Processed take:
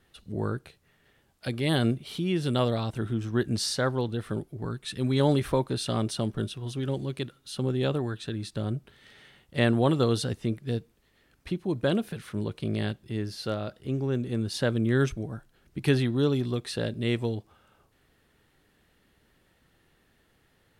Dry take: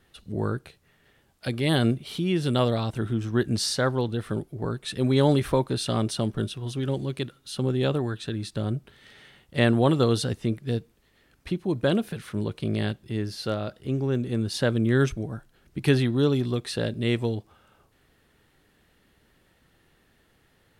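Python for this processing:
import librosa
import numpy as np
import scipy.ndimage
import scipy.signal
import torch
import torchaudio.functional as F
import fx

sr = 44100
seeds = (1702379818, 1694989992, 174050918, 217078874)

y = fx.peak_eq(x, sr, hz=580.0, db=-6.0, octaves=1.3, at=(4.57, 5.2))
y = y * 10.0 ** (-2.5 / 20.0)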